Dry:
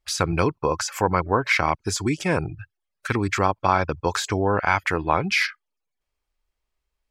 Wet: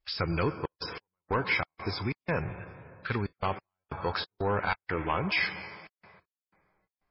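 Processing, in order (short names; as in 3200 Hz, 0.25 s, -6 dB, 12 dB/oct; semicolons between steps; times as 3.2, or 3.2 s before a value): 2.01–4.68 bell 310 Hz -14.5 dB -> -4 dB 0.29 oct; reverb RT60 2.4 s, pre-delay 88 ms, DRR 13.5 dB; soft clip -14.5 dBFS, distortion -11 dB; step gate "xxxx.x..xx.xx.xx" 92 bpm -60 dB; gain -4.5 dB; MP3 16 kbps 12000 Hz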